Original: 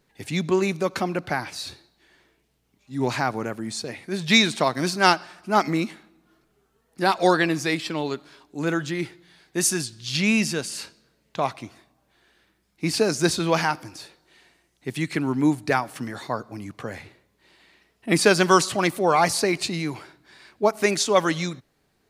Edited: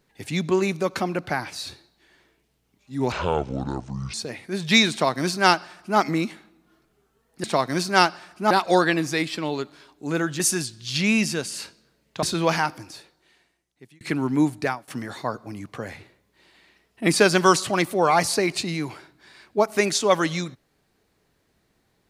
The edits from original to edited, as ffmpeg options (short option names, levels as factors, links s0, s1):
-filter_complex "[0:a]asplit=9[s0][s1][s2][s3][s4][s5][s6][s7][s8];[s0]atrim=end=3.124[s9];[s1]atrim=start=3.12:end=3.73,asetpts=PTS-STARTPTS,asetrate=26460,aresample=44100[s10];[s2]atrim=start=3.726:end=7.032[s11];[s3]atrim=start=4.508:end=5.582[s12];[s4]atrim=start=7.028:end=8.922[s13];[s5]atrim=start=9.588:end=11.422[s14];[s6]atrim=start=13.278:end=15.06,asetpts=PTS-STARTPTS,afade=t=out:st=0.542:d=1.24[s15];[s7]atrim=start=15.06:end=15.93,asetpts=PTS-STARTPTS,afade=t=in:d=0.004:c=hsin,afade=t=out:st=0.56:d=0.31:silence=0.0944061[s16];[s8]atrim=start=15.93,asetpts=PTS-STARTPTS,afade=t=in:d=0.004:c=hsin:silence=0.0944061[s17];[s9][s10]acrossfade=d=0.004:c1=hsin:c2=hsin[s18];[s18][s11]acrossfade=d=0.004:c1=hsin:c2=hsin[s19];[s19][s12]acrossfade=d=0.004:c1=hsin:c2=hsin[s20];[s20][s13]acrossfade=d=0.004:c1=hsin:c2=hsin[s21];[s21][s14]acrossfade=d=0.004:c1=hsin:c2=hsin[s22];[s15][s16][s17]concat=n=3:v=0:a=1[s23];[s22][s23]acrossfade=d=0.004:c1=hsin:c2=hsin"